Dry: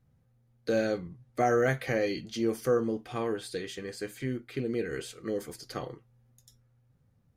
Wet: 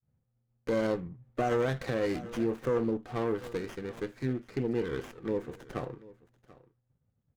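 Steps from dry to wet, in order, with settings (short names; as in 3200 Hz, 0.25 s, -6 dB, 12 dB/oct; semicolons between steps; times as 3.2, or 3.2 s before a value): Wiener smoothing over 9 samples; expander -59 dBFS; echo 0.737 s -20.5 dB; limiter -21 dBFS, peak gain reduction 6 dB; running maximum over 9 samples; gain +1 dB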